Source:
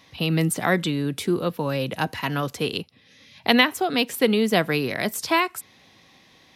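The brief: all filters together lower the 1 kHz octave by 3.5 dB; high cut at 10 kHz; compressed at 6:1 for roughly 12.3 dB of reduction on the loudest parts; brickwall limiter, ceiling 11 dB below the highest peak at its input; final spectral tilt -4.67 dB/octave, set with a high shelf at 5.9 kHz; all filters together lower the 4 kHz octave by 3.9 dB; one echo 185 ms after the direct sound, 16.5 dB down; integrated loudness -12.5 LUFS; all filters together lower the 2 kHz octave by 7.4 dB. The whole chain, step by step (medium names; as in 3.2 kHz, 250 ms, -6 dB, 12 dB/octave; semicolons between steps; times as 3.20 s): low-pass 10 kHz; peaking EQ 1 kHz -3 dB; peaking EQ 2 kHz -8 dB; peaking EQ 4 kHz -3.5 dB; treble shelf 5.9 kHz +6.5 dB; compression 6:1, threshold -29 dBFS; peak limiter -25 dBFS; delay 185 ms -16.5 dB; trim +22.5 dB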